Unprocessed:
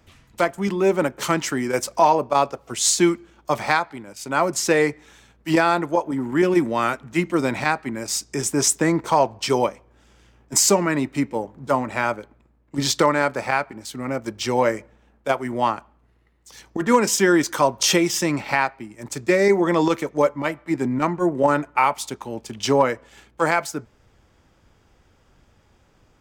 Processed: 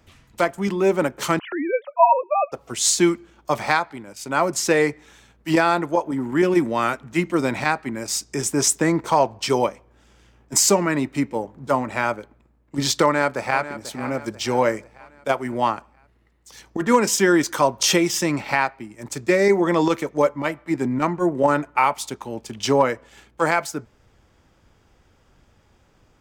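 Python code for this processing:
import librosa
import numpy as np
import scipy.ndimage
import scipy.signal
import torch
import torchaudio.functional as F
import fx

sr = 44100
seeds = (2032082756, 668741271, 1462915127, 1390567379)

y = fx.sine_speech(x, sr, at=(1.39, 2.52))
y = fx.echo_throw(y, sr, start_s=13.04, length_s=0.81, ms=490, feedback_pct=50, wet_db=-13.5)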